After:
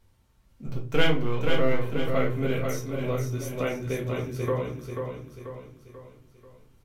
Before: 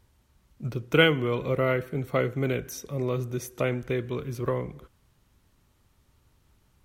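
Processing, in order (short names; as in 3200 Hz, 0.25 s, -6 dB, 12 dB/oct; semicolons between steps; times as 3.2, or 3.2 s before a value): 0.66–1.81 half-wave gain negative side -7 dB; feedback echo 0.488 s, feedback 46%, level -5.5 dB; shoebox room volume 120 m³, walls furnished, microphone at 1.6 m; gain -4.5 dB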